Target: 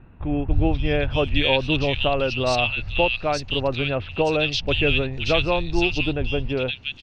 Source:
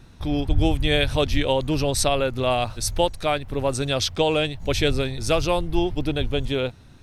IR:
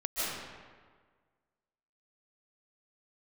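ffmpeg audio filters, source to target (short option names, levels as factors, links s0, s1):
-filter_complex "[0:a]lowpass=f=4900:w=0.5412,lowpass=f=4900:w=1.3066,equalizer=f=2700:t=o:w=0.26:g=12.5,acrossover=split=2000[s0][s1];[s1]adelay=520[s2];[s0][s2]amix=inputs=2:normalize=0"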